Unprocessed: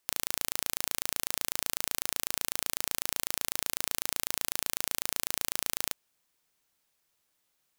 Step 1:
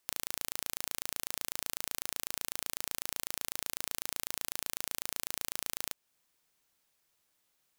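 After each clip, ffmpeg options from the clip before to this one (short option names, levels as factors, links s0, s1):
-af "acompressor=threshold=0.0126:ratio=1.5"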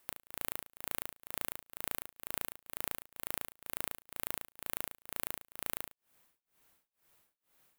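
-af "equalizer=f=5500:t=o:w=1.7:g=-8.5,asoftclip=type=tanh:threshold=0.1,tremolo=f=2.1:d=0.98,volume=3.16"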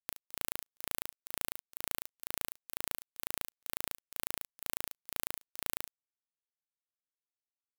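-af "acrusher=bits=3:mix=0:aa=0.5"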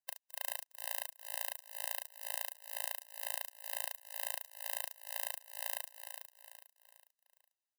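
-af "aecho=1:1:409|818|1227|1636:0.398|0.155|0.0606|0.0236,afftfilt=real='re*eq(mod(floor(b*sr/1024/520),2),1)':imag='im*eq(mod(floor(b*sr/1024/520),2),1)':win_size=1024:overlap=0.75,volume=1.33"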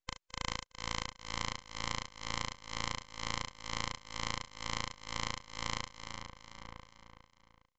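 -filter_complex "[0:a]aeval=exprs='abs(val(0))':c=same,aresample=16000,aresample=44100,asplit=2[s0][s1];[s1]adelay=991.3,volume=0.355,highshelf=f=4000:g=-22.3[s2];[s0][s2]amix=inputs=2:normalize=0,volume=1.41"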